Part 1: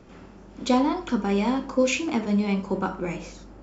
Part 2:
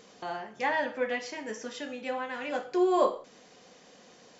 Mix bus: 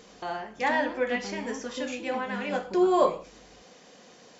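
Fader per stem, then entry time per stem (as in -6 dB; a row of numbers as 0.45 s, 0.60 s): -14.5 dB, +2.5 dB; 0.00 s, 0.00 s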